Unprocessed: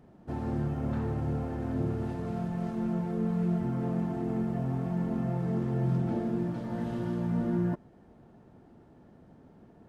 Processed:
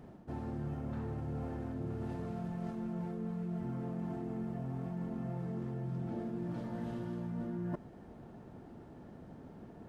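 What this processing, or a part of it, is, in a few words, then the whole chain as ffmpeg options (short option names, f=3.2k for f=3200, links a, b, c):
compression on the reversed sound: -af "areverse,acompressor=threshold=-41dB:ratio=6,areverse,volume=4dB"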